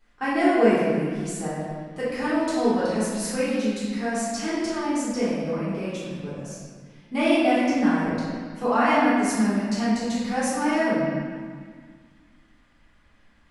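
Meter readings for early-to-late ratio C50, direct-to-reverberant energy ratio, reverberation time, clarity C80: −2.5 dB, −11.5 dB, 1.8 s, 0.0 dB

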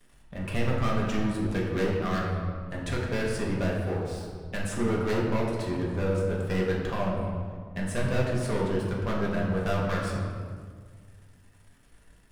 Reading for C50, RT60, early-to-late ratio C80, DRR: 1.5 dB, 1.7 s, 3.0 dB, −4.0 dB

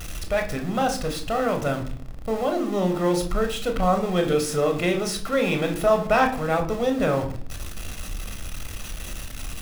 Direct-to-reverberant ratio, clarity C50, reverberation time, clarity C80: 4.5 dB, 11.0 dB, 0.55 s, 15.5 dB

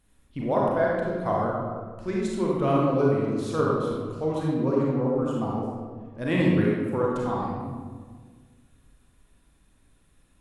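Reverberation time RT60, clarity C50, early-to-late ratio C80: 1.6 s, −2.0 dB, 0.5 dB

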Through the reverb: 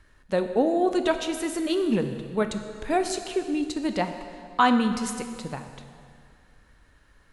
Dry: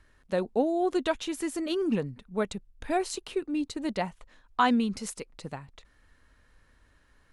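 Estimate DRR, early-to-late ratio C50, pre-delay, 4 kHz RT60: 7.0 dB, 8.5 dB, 9 ms, 2.0 s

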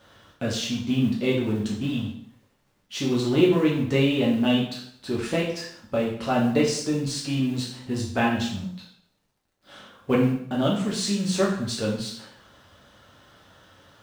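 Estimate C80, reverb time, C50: 8.0 dB, 0.65 s, 4.5 dB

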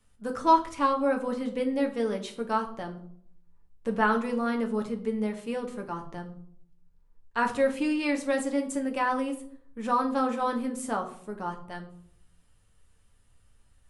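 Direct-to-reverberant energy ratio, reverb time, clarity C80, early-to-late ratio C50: 2.5 dB, 0.60 s, 15.5 dB, 12.0 dB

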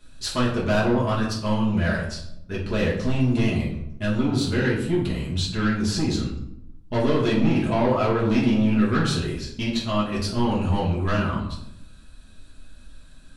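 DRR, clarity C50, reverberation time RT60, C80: −6.5 dB, 4.5 dB, 0.80 s, 8.5 dB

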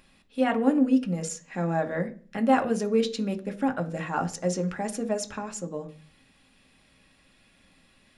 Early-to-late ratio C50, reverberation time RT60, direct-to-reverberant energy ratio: 17.0 dB, 0.40 s, 6.0 dB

